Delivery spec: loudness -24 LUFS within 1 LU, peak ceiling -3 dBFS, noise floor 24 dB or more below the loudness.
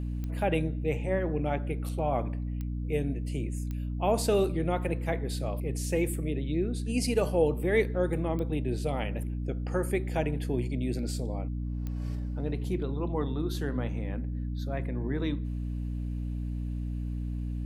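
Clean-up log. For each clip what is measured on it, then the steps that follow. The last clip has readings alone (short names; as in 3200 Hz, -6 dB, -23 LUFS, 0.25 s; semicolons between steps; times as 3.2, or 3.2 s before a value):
clicks 5; hum 60 Hz; harmonics up to 300 Hz; hum level -30 dBFS; loudness -31.5 LUFS; peak -13.0 dBFS; loudness target -24.0 LUFS
-> de-click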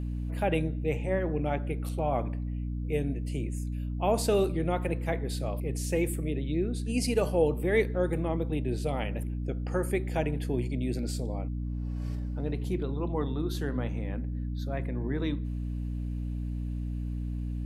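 clicks 0; hum 60 Hz; harmonics up to 300 Hz; hum level -30 dBFS
-> de-hum 60 Hz, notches 5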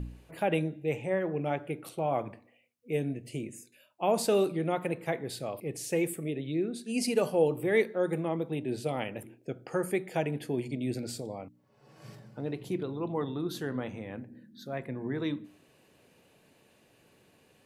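hum none; loudness -32.5 LUFS; peak -14.0 dBFS; loudness target -24.0 LUFS
-> gain +8.5 dB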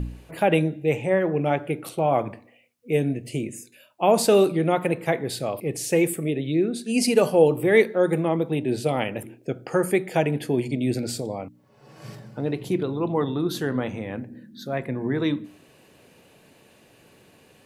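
loudness -24.0 LUFS; peak -5.5 dBFS; noise floor -56 dBFS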